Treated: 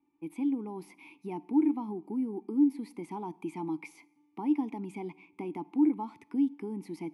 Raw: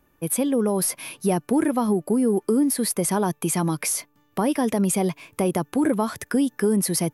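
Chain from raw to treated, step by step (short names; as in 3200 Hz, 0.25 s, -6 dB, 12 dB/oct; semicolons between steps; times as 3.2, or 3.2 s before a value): vowel filter u; two-slope reverb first 0.75 s, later 2.1 s, DRR 19.5 dB; gain -1.5 dB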